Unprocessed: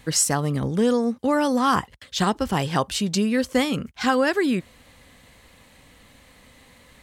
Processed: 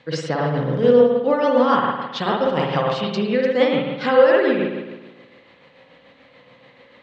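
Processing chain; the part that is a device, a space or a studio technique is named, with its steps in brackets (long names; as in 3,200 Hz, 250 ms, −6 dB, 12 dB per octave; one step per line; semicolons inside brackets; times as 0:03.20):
high-pass filter 250 Hz 6 dB per octave
combo amplifier with spring reverb and tremolo (spring reverb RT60 1.2 s, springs 53 ms, chirp 60 ms, DRR −2.5 dB; amplitude tremolo 6.9 Hz, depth 39%; loudspeaker in its box 80–4,300 Hz, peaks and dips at 86 Hz −8 dB, 140 Hz +7 dB, 520 Hz +9 dB)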